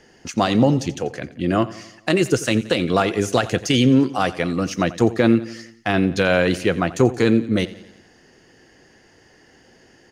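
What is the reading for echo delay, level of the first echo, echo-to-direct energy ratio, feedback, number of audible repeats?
88 ms, −17.5 dB, −16.0 dB, 55%, 4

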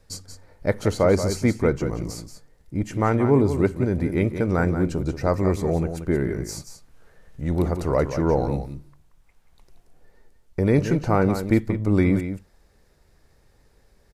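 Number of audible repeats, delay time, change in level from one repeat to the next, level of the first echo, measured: 1, 180 ms, repeats not evenly spaced, −9.5 dB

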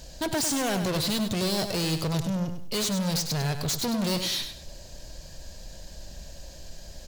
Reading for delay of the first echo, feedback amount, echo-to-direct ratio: 99 ms, 28%, −8.0 dB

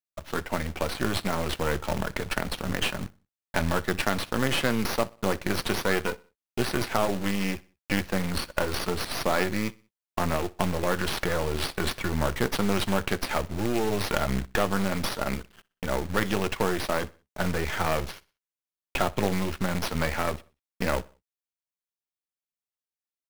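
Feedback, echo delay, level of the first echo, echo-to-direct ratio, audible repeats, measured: 42%, 62 ms, −23.0 dB, −22.0 dB, 2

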